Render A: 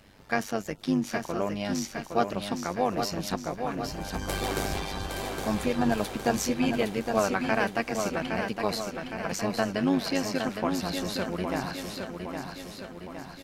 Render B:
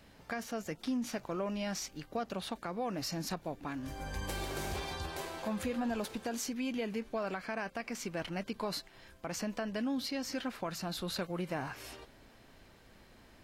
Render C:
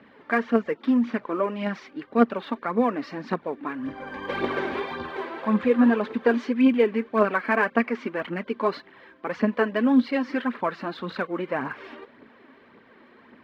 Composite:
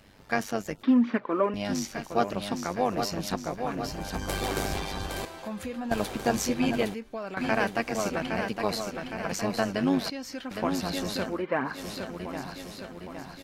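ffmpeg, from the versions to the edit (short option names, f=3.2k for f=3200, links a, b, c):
-filter_complex "[2:a]asplit=2[a][b];[1:a]asplit=3[c][d][e];[0:a]asplit=6[f][g][h][i][j][k];[f]atrim=end=0.832[l];[a]atrim=start=0.828:end=1.542[m];[g]atrim=start=1.538:end=5.252[n];[c]atrim=start=5.248:end=5.912[o];[h]atrim=start=5.908:end=6.942[p];[d]atrim=start=6.938:end=7.372[q];[i]atrim=start=7.368:end=10.102[r];[e]atrim=start=10.098:end=10.512[s];[j]atrim=start=10.508:end=11.47[t];[b]atrim=start=11.23:end=11.87[u];[k]atrim=start=11.63[v];[l][m]acrossfade=d=0.004:c1=hsin:c2=hsin[w];[w][n]acrossfade=d=0.004:c1=hsin:c2=hsin[x];[x][o]acrossfade=d=0.004:c1=hsin:c2=hsin[y];[y][p]acrossfade=d=0.004:c1=hsin:c2=hsin[z];[z][q]acrossfade=d=0.004:c1=hsin:c2=hsin[aa];[aa][r]acrossfade=d=0.004:c1=hsin:c2=hsin[ab];[ab][s]acrossfade=d=0.004:c1=hsin:c2=hsin[ac];[ac][t]acrossfade=d=0.004:c1=hsin:c2=hsin[ad];[ad][u]acrossfade=d=0.24:c1=tri:c2=tri[ae];[ae][v]acrossfade=d=0.24:c1=tri:c2=tri"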